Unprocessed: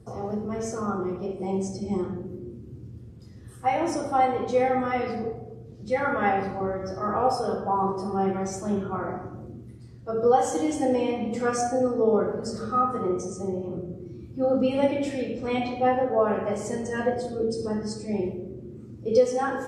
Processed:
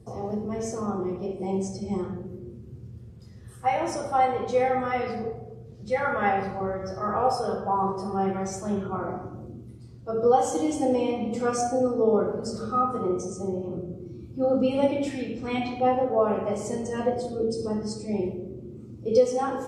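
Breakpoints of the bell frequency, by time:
bell -11 dB 0.32 oct
1400 Hz
from 1.64 s 290 Hz
from 8.86 s 1800 Hz
from 15.07 s 550 Hz
from 15.8 s 1700 Hz

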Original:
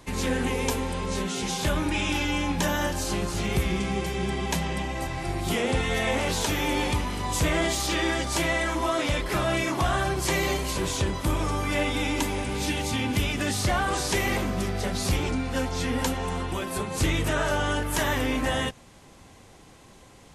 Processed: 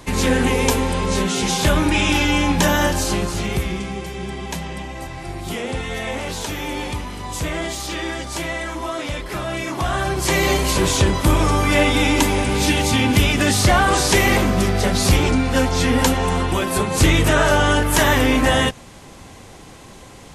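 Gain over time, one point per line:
2.93 s +9 dB
3.98 s -0.5 dB
9.51 s -0.5 dB
10.67 s +10 dB

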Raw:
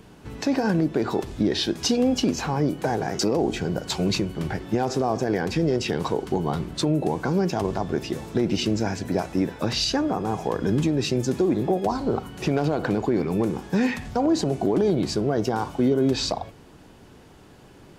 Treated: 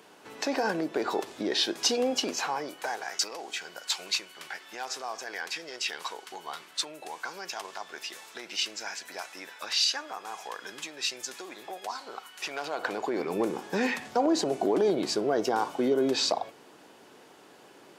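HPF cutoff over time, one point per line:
2.13 s 490 Hz
3.19 s 1400 Hz
12.37 s 1400 Hz
13.4 s 380 Hz

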